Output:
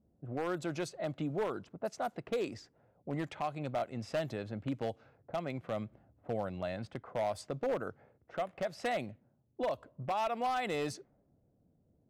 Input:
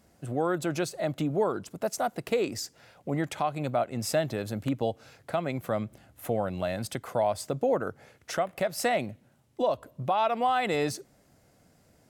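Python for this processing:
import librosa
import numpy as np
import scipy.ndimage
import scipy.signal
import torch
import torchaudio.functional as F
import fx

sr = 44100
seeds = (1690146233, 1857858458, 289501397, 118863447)

y = fx.env_lowpass(x, sr, base_hz=400.0, full_db=-23.5)
y = 10.0 ** (-19.5 / 20.0) * (np.abs((y / 10.0 ** (-19.5 / 20.0) + 3.0) % 4.0 - 2.0) - 1.0)
y = y * librosa.db_to_amplitude(-7.0)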